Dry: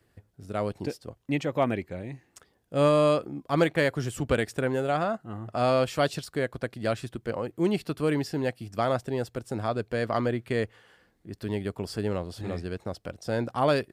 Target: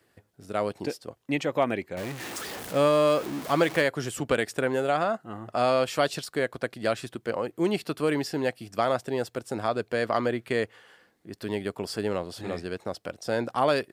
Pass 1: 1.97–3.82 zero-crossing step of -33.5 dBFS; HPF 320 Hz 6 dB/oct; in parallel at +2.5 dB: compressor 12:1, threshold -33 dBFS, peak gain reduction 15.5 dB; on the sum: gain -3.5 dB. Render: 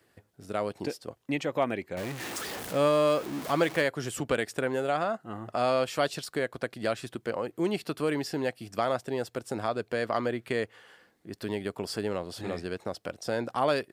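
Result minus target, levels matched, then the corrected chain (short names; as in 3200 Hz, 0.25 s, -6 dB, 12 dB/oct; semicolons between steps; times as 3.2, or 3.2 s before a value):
compressor: peak gain reduction +8.5 dB
1.97–3.82 zero-crossing step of -33.5 dBFS; HPF 320 Hz 6 dB/oct; in parallel at +2.5 dB: compressor 12:1, threshold -24 dBFS, peak gain reduction 7.5 dB; on the sum: gain -3.5 dB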